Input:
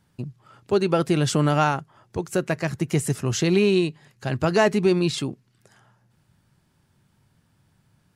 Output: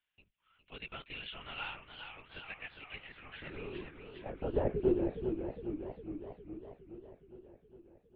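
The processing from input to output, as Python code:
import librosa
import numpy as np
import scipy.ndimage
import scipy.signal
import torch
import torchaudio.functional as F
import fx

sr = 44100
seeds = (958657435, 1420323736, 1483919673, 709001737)

y = fx.filter_sweep_bandpass(x, sr, from_hz=2700.0, to_hz=390.0, start_s=2.93, end_s=4.54, q=2.7)
y = fx.lpc_vocoder(y, sr, seeds[0], excitation='whisper', order=10)
y = fx.echo_warbled(y, sr, ms=412, feedback_pct=66, rate_hz=2.8, cents=150, wet_db=-7.5)
y = y * librosa.db_to_amplitude(-7.5)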